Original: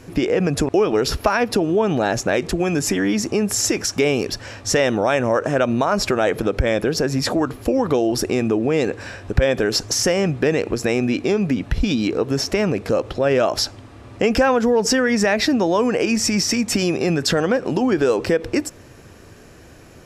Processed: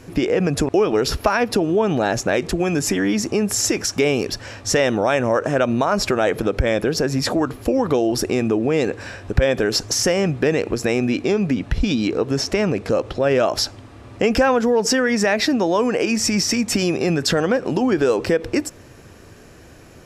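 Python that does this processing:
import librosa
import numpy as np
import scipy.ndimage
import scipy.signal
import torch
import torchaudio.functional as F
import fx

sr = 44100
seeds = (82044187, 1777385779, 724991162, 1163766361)

y = fx.lowpass(x, sr, hz=11000.0, slope=12, at=(11.23, 13.26))
y = fx.low_shelf(y, sr, hz=73.0, db=-12.0, at=(14.61, 16.2))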